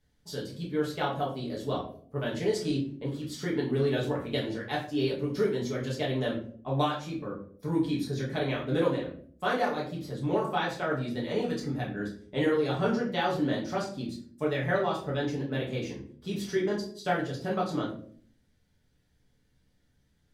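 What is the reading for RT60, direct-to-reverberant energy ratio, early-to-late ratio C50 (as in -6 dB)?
0.55 s, -5.0 dB, 7.5 dB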